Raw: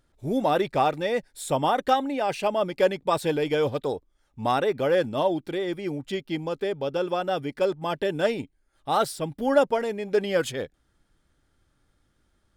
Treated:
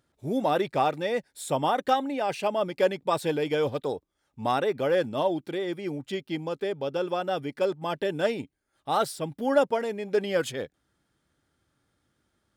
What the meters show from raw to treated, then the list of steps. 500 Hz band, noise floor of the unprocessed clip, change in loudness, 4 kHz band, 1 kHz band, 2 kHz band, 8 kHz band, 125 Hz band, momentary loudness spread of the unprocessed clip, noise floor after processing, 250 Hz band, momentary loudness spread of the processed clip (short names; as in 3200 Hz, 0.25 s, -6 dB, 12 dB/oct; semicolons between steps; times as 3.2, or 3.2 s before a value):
-2.0 dB, -70 dBFS, -2.0 dB, -2.0 dB, -2.0 dB, -2.0 dB, -2.0 dB, -2.5 dB, 8 LU, -77 dBFS, -2.0 dB, 8 LU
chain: HPF 91 Hz; gain -2 dB